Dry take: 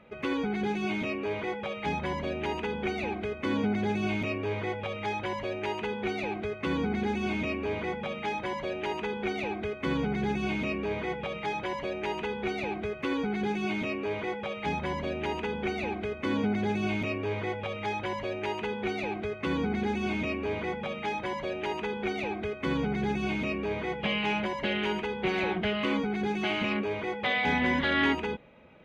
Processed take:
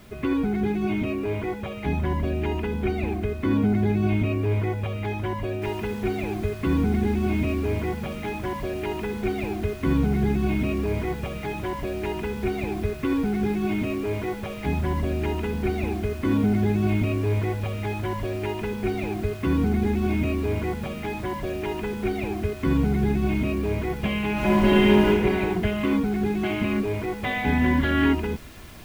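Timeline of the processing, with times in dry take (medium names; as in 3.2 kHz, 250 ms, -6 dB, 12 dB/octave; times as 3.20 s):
5.62 s: noise floor step -49 dB -42 dB
24.33–25.08 s: reverb throw, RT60 1.7 s, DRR -7 dB
whole clip: tone controls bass +15 dB, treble -12 dB; comb 2.9 ms, depth 42%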